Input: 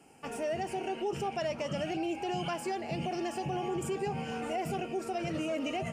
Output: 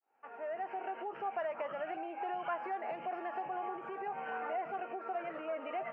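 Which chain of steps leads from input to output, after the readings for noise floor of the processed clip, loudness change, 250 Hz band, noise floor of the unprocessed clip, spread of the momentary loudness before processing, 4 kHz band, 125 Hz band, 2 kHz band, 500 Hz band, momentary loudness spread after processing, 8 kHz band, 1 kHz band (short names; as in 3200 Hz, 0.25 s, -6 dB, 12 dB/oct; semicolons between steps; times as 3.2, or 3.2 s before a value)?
-51 dBFS, -5.0 dB, -13.5 dB, -43 dBFS, 2 LU, -16.5 dB, -26.0 dB, -3.0 dB, -6.0 dB, 3 LU, under -35 dB, -0.5 dB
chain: opening faded in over 1.61 s; LPF 1700 Hz 24 dB/oct; compressor 6:1, threshold -40 dBFS, peak gain reduction 10 dB; HPF 830 Hz 12 dB/oct; gain +11.5 dB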